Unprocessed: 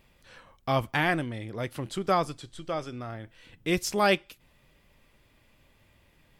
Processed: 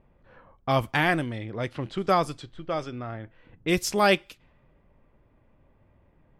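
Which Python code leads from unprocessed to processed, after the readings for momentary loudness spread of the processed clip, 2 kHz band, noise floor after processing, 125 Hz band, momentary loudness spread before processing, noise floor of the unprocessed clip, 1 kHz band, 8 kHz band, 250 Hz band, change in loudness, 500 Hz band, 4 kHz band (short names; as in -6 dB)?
15 LU, +2.5 dB, -63 dBFS, +2.5 dB, 15 LU, -64 dBFS, +2.5 dB, +2.0 dB, +2.5 dB, +2.5 dB, +2.5 dB, +2.5 dB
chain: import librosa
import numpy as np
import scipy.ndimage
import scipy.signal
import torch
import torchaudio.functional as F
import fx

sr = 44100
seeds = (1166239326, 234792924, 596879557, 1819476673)

y = fx.env_lowpass(x, sr, base_hz=980.0, full_db=-25.5)
y = y * librosa.db_to_amplitude(2.5)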